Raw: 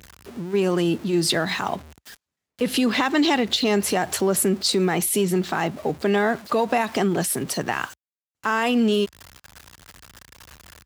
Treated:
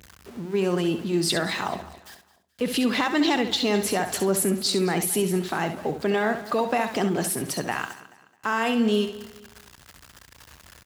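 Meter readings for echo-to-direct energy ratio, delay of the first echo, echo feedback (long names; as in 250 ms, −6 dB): −8.0 dB, 67 ms, repeats not evenly spaced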